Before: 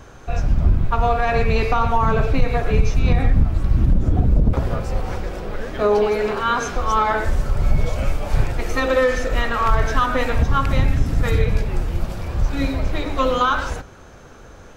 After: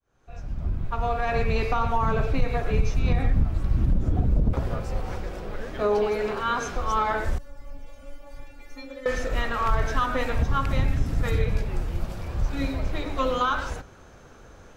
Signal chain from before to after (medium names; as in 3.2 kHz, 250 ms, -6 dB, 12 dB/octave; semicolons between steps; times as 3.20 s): fade-in on the opening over 1.35 s; 7.38–9.06 s: inharmonic resonator 280 Hz, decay 0.28 s, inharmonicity 0.002; trim -6 dB